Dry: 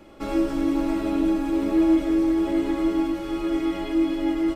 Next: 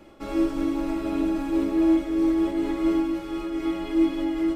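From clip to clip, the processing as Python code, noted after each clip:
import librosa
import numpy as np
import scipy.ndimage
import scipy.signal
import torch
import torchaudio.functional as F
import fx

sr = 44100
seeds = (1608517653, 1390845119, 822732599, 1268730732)

y = fx.room_flutter(x, sr, wall_m=9.4, rt60_s=0.31)
y = fx.am_noise(y, sr, seeds[0], hz=5.7, depth_pct=55)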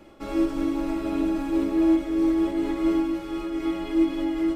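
y = fx.end_taper(x, sr, db_per_s=200.0)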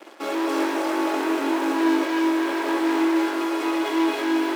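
y = fx.leveller(x, sr, passes=5)
y = scipy.signal.sosfilt(scipy.signal.butter(4, 330.0, 'highpass', fs=sr, output='sos'), y)
y = fx.rev_gated(y, sr, seeds[1], gate_ms=350, shape='rising', drr_db=-2.0)
y = y * librosa.db_to_amplitude(-7.5)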